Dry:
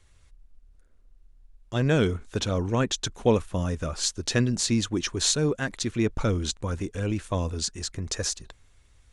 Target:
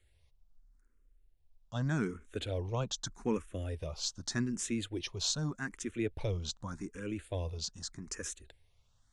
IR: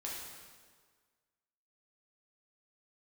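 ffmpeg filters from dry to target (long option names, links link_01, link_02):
-filter_complex "[0:a]asplit=2[link_01][link_02];[link_02]afreqshift=0.83[link_03];[link_01][link_03]amix=inputs=2:normalize=1,volume=-7.5dB"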